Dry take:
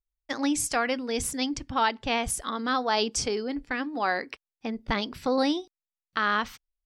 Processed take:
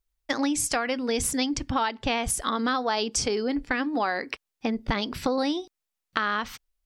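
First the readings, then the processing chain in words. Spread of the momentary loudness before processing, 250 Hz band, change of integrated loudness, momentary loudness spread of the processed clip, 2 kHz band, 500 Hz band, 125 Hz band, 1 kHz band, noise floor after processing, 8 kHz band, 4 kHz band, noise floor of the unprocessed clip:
9 LU, +2.0 dB, +1.0 dB, 7 LU, 0.0 dB, +1.0 dB, +4.0 dB, 0.0 dB, −85 dBFS, +2.5 dB, +0.5 dB, below −85 dBFS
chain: downward compressor, threshold −31 dBFS, peak gain reduction 11.5 dB
level +8 dB

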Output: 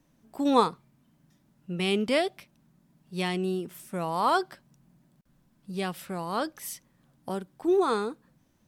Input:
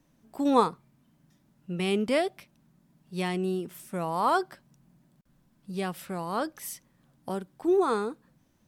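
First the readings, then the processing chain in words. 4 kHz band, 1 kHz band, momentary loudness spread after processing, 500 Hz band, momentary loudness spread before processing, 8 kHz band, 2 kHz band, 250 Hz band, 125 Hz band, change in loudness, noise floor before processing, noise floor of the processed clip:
+4.5 dB, +0.5 dB, 15 LU, 0.0 dB, 15 LU, +0.5 dB, +1.5 dB, 0.0 dB, 0.0 dB, +0.5 dB, −67 dBFS, −67 dBFS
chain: dynamic equaliser 3,700 Hz, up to +5 dB, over −46 dBFS, Q 0.98

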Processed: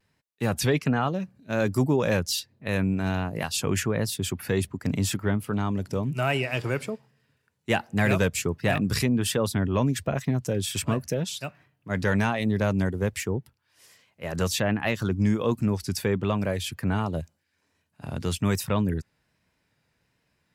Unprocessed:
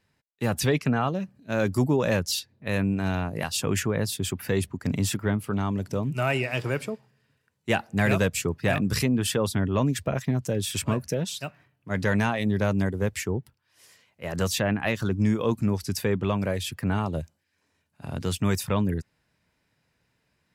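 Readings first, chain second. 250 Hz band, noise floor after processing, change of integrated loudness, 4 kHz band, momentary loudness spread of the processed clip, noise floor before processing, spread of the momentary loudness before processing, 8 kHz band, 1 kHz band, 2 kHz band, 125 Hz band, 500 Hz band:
0.0 dB, −74 dBFS, 0.0 dB, 0.0 dB, 7 LU, −74 dBFS, 7 LU, 0.0 dB, 0.0 dB, 0.0 dB, 0.0 dB, 0.0 dB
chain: pitch vibrato 1.3 Hz 48 cents

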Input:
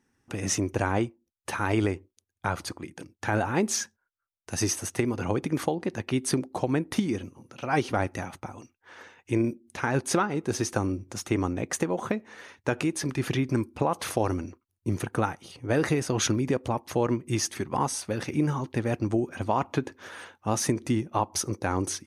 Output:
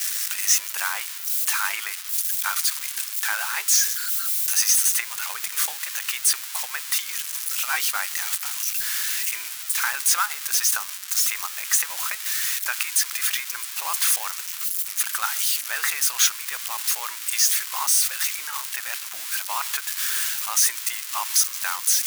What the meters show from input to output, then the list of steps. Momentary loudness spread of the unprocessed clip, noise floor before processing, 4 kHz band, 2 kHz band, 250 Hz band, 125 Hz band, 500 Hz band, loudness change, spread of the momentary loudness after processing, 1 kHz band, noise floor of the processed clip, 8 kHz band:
11 LU, −82 dBFS, +12.0 dB, +7.5 dB, below −40 dB, below −40 dB, −22.0 dB, +7.0 dB, 9 LU, −1.0 dB, −35 dBFS, +13.5 dB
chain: spike at every zero crossing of −21.5 dBFS
high-pass filter 1,200 Hz 24 dB per octave
level +6.5 dB

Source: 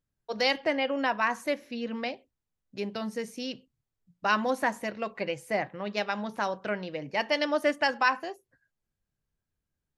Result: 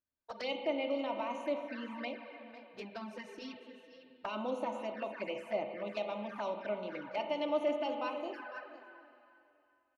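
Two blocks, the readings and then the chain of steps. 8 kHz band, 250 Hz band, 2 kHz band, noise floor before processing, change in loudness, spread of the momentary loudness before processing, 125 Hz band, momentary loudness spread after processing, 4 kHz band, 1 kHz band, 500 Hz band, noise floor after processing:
below −15 dB, −7.0 dB, −15.0 dB, below −85 dBFS, −8.5 dB, 12 LU, below −10 dB, 17 LU, −11.5 dB, −9.5 dB, −5.0 dB, −72 dBFS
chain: brickwall limiter −18.5 dBFS, peak gain reduction 7.5 dB
high-pass filter 1,200 Hz 6 dB per octave
spectral tilt −2.5 dB per octave
notch filter 1,900 Hz, Q 18
comb filter 3.3 ms, depth 51%
single-tap delay 501 ms −14.5 dB
spring reverb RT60 2.7 s, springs 32/38/44 ms, chirp 30 ms, DRR 5 dB
flanger swept by the level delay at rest 11.7 ms, full sweep at −32.5 dBFS
high-shelf EQ 5,000 Hz −11 dB

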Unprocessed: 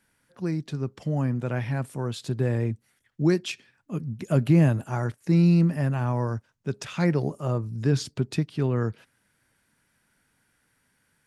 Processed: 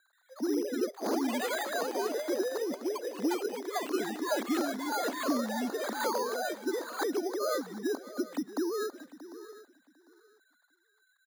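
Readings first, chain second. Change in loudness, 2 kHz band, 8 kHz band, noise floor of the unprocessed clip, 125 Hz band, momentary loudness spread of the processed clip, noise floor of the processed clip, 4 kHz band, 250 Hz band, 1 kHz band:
−7.0 dB, 0.0 dB, can't be measured, −71 dBFS, below −30 dB, 5 LU, −72 dBFS, +0.5 dB, −7.5 dB, +2.5 dB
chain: three sine waves on the formant tracks
downward compressor, threshold −33 dBFS, peak gain reduction 21 dB
elliptic band-pass filter 260–1,600 Hz, stop band 40 dB
single-tap delay 631 ms −16.5 dB
delay with pitch and tempo change per echo 130 ms, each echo +3 semitones, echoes 3
repeating echo 749 ms, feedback 21%, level −18 dB
bad sample-rate conversion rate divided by 8×, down none, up hold
level +3.5 dB

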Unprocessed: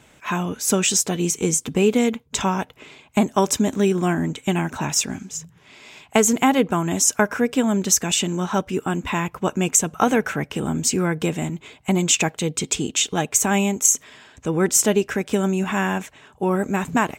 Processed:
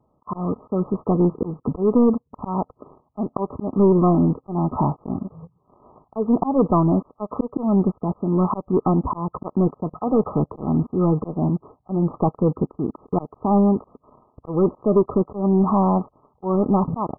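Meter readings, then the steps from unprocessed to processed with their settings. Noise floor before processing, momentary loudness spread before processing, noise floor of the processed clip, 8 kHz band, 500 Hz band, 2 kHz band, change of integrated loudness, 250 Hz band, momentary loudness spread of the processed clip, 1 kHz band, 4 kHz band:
−54 dBFS, 8 LU, −67 dBFS, below −40 dB, +1.0 dB, below −40 dB, −1.0 dB, +2.0 dB, 11 LU, −0.5 dB, below −40 dB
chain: volume swells 232 ms
leveller curve on the samples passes 3
pitch vibrato 0.98 Hz 24 cents
linear-phase brick-wall low-pass 1,300 Hz
level −4 dB

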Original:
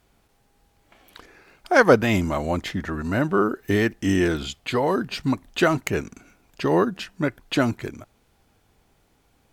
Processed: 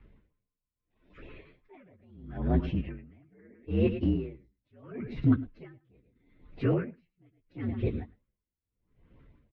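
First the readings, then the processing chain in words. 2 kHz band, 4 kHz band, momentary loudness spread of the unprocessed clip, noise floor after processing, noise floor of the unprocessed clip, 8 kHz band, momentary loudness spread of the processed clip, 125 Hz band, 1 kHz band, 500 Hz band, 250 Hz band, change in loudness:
−23.5 dB, below −20 dB, 10 LU, below −85 dBFS, −64 dBFS, below −40 dB, 18 LU, −4.0 dB, −21.5 dB, −14.0 dB, −8.0 dB, −8.0 dB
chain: partials spread apart or drawn together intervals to 121%
low-shelf EQ 340 Hz +9.5 dB
on a send: single-tap delay 107 ms −14 dB
on the sum: auto-filter notch saw up 6.2 Hz 580–1,600 Hz
transient designer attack −8 dB, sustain −2 dB
de-essing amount 90%
low-pass filter 2,700 Hz 24 dB per octave
parametric band 830 Hz −6.5 dB 0.22 octaves
downward compressor 2 to 1, threshold −30 dBFS, peak gain reduction 9.5 dB
tremolo with a sine in dB 0.76 Hz, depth 39 dB
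level +6 dB

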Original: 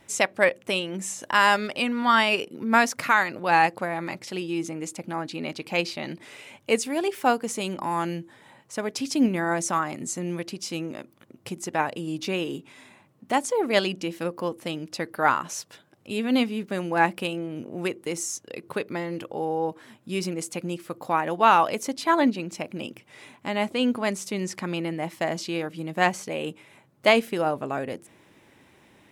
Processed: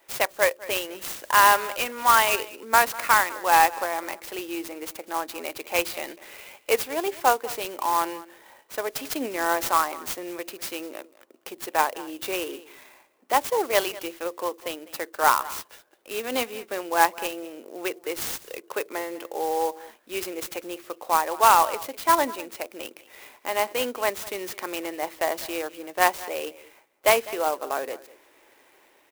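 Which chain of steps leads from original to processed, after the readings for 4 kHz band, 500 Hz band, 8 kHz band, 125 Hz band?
0.0 dB, 0.0 dB, +3.0 dB, below −15 dB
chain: high-pass filter 380 Hz 24 dB per octave
dynamic equaliser 1,000 Hz, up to +5 dB, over −38 dBFS, Q 3
automatic gain control gain up to 3.5 dB
on a send: single-tap delay 201 ms −19 dB
on the sum: converter with an unsteady clock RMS 0.043 ms
level −2 dB

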